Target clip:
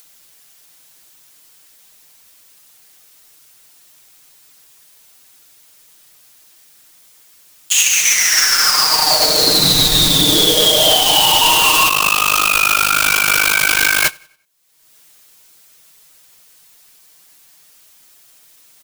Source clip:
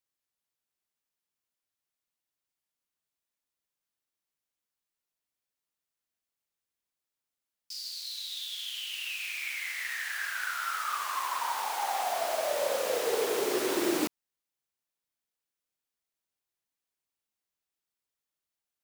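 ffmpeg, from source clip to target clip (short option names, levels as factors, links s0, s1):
-filter_complex "[0:a]aeval=exprs='val(0)*sin(2*PI*1900*n/s)':c=same,aecho=1:1:6.5:0.96,acompressor=mode=upward:threshold=0.0251:ratio=2.5,highshelf=f=2900:g=7.5,aecho=1:1:93|186|279|372:0.2|0.0758|0.0288|0.0109,acompressor=threshold=0.0355:ratio=3,agate=range=0.0631:threshold=0.0251:ratio=16:detection=peak,asettb=1/sr,asplit=3[s0][s1][s2];[s0]atrim=end=11.894[s3];[s1]atrim=start=11.89:end=14.05,asetpts=PTS-STARTPTS,afade=t=in:d=0.004:c=qsin,afade=t=out:st=2.156:d=0.004:c=qsin,tremolo=f=51:d=0.947[s4];[s2]atrim=start=14.046[s5];[s3][s4]acrossfade=d=0.004:c1=hsin:c2=qsin[s6];[s6][s5]acrossfade=d=0.004:c1=qsin:c2=hsin,alimiter=level_in=23.7:limit=0.891:release=50:level=0:latency=1,volume=0.891"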